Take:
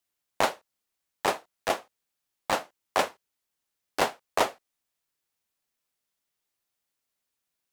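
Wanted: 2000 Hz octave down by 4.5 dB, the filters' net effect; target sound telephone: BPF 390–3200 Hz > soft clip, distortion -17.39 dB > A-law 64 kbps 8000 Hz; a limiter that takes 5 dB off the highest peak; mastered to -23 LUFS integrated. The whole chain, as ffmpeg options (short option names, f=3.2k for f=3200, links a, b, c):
-af "equalizer=f=2k:t=o:g=-5,alimiter=limit=-15dB:level=0:latency=1,highpass=390,lowpass=3.2k,asoftclip=threshold=-20dB,volume=13.5dB" -ar 8000 -c:a pcm_alaw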